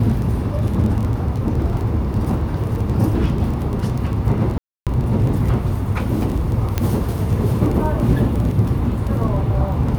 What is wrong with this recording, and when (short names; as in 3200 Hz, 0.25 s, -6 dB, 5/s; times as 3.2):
crackle 17/s -23 dBFS
4.58–4.87 gap 0.287 s
6.78 pop -5 dBFS